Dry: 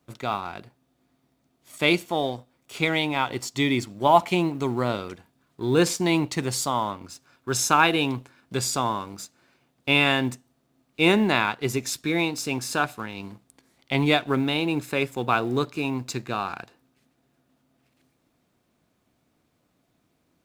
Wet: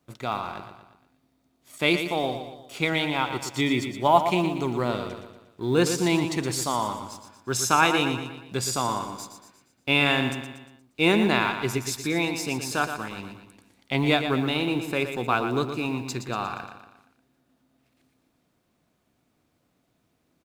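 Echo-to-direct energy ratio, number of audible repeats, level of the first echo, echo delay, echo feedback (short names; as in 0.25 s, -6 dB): -7.5 dB, 5, -8.5 dB, 0.118 s, 48%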